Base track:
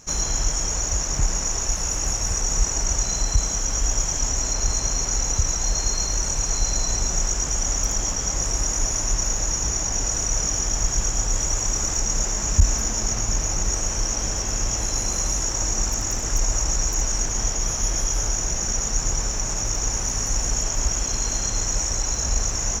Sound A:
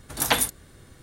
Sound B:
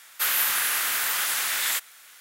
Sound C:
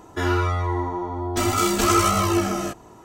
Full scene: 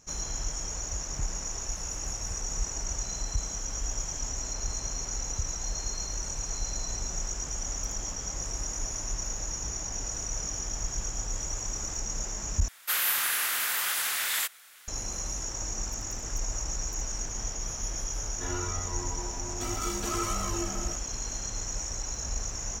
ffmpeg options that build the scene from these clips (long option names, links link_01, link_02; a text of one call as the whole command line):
ffmpeg -i bed.wav -i cue0.wav -i cue1.wav -i cue2.wav -filter_complex "[0:a]volume=-10.5dB,asplit=2[link_01][link_02];[link_01]atrim=end=12.684[link_03];[2:a]atrim=end=2.2,asetpts=PTS-STARTPTS,volume=-3.5dB[link_04];[link_02]atrim=start=14.876[link_05];[3:a]atrim=end=3.04,asetpts=PTS-STARTPTS,volume=-14dB,afade=type=in:duration=0.004:curve=hsin,afade=type=out:start_time=3.036:duration=0.004:curve=hsin,adelay=18240[link_06];[link_03][link_04]acrossfade=duration=0.004:curve1=hsin:curve2=hsin[link_07];[link_07][link_05]acrossfade=duration=0.004:curve1=hsin:curve2=hsin[link_08];[link_08][link_06]amix=inputs=2:normalize=0" out.wav